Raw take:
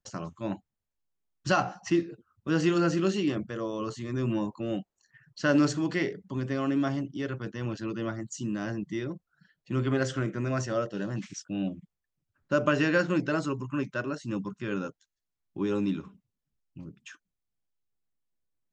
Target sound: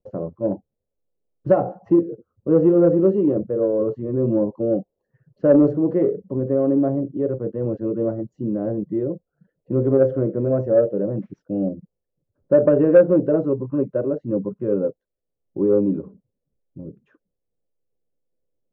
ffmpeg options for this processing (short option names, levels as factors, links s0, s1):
-af "lowpass=f=510:t=q:w=4.8,acontrast=62,volume=0.891"